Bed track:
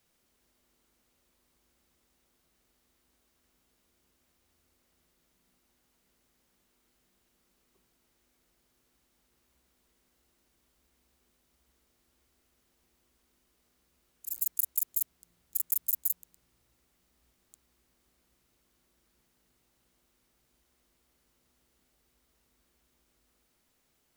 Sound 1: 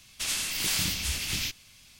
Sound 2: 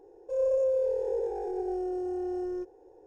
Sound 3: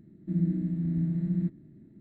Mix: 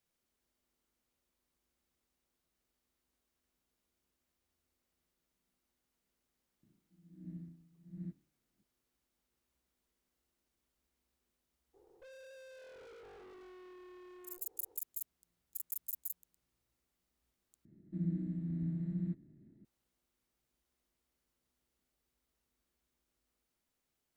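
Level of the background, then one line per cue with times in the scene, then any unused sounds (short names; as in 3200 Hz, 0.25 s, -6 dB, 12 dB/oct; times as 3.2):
bed track -12 dB
6.63 add 3 -15 dB + dB-linear tremolo 1.4 Hz, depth 25 dB
11.73 add 2 -9 dB, fades 0.02 s + tube stage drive 45 dB, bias 0.6
17.65 replace with 3 -9 dB
not used: 1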